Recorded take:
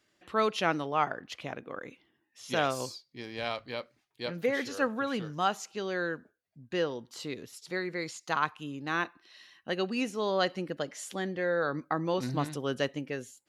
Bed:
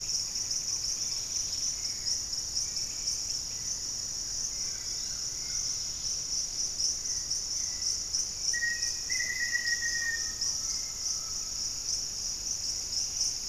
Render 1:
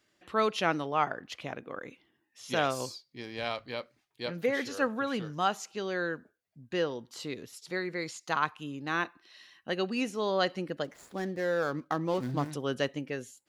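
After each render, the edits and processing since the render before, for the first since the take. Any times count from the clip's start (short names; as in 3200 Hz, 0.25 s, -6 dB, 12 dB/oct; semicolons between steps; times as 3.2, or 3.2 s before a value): 10.84–12.51 median filter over 15 samples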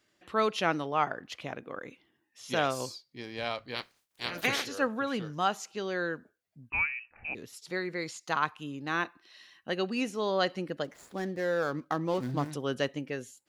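3.74–4.65 spectral limiter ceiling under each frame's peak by 28 dB; 6.7–7.35 inverted band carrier 2800 Hz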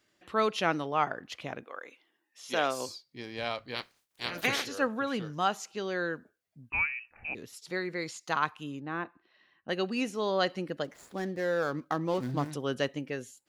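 1.64–2.88 HPF 670 Hz -> 200 Hz; 8.8–9.69 tape spacing loss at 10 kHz 42 dB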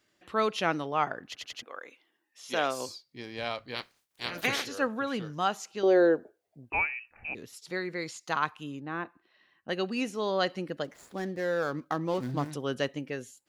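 1.26 stutter in place 0.09 s, 4 plays; 5.83–6.97 band shelf 520 Hz +13.5 dB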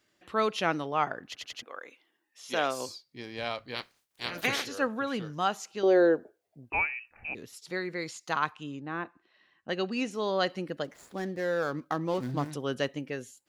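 8.53–10.11 LPF 8300 Hz 24 dB/oct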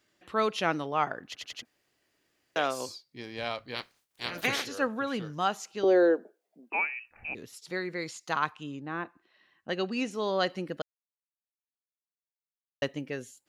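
1.65–2.56 room tone; 5.84–6.97 elliptic high-pass 190 Hz; 10.82–12.82 mute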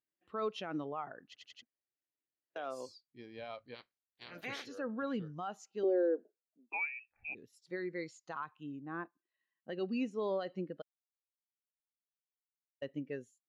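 limiter -23.5 dBFS, peak gain reduction 10 dB; spectral expander 1.5:1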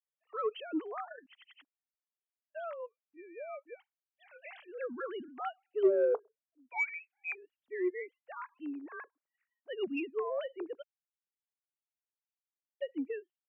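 sine-wave speech; in parallel at -7.5 dB: soft clip -28.5 dBFS, distortion -11 dB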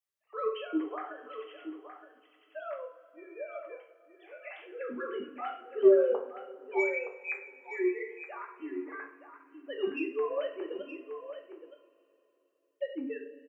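on a send: echo 0.919 s -10.5 dB; on the sum: two-slope reverb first 0.45 s, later 3.4 s, from -21 dB, DRR 0 dB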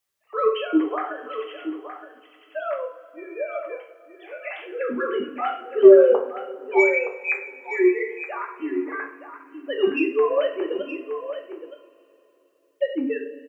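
gain +11.5 dB; limiter -2 dBFS, peak gain reduction 2 dB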